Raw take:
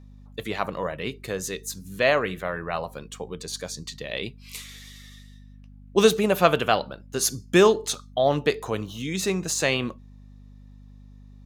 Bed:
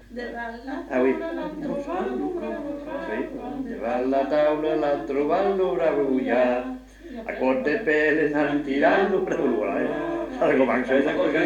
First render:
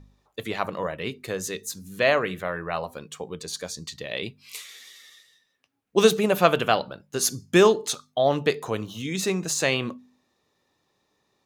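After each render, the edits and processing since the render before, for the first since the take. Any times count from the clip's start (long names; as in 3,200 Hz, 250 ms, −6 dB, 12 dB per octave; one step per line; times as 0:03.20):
hum removal 50 Hz, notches 5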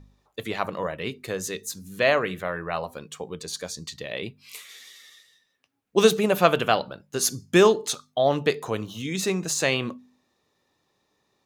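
0:04.06–0:04.70: dynamic equaliser 5,400 Hz, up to −6 dB, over −46 dBFS, Q 0.72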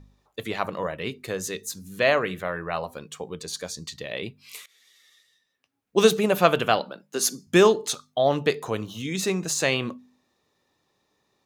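0:04.66–0:06.04: fade in, from −19.5 dB
0:06.79–0:07.47: Butterworth high-pass 170 Hz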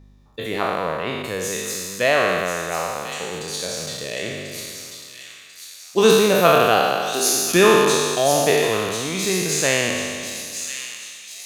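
peak hold with a decay on every bin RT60 2.08 s
delay with a high-pass on its return 1,042 ms, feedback 55%, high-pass 3,100 Hz, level −6 dB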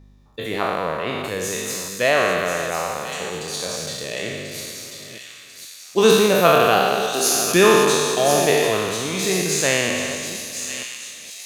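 delay that plays each chunk backwards 471 ms, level −12 dB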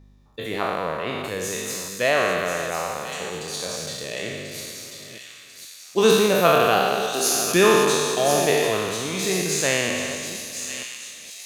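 level −2.5 dB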